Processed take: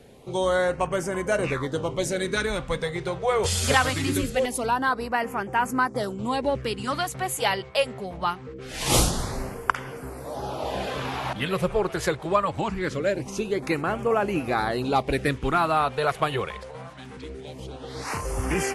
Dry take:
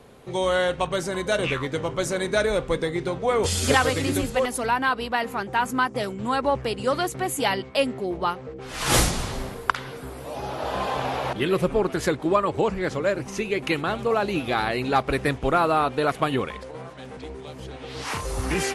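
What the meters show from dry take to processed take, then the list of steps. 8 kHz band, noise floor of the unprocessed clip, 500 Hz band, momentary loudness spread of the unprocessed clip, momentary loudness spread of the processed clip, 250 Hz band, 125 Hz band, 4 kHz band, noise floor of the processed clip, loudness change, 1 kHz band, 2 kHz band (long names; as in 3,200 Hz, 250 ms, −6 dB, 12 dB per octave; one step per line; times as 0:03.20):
0.0 dB, −40 dBFS, −1.5 dB, 12 LU, 12 LU, −1.5 dB, −0.5 dB, −1.5 dB, −41 dBFS, −1.5 dB, −1.0 dB, −1.0 dB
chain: auto-filter notch sine 0.23 Hz 250–4,000 Hz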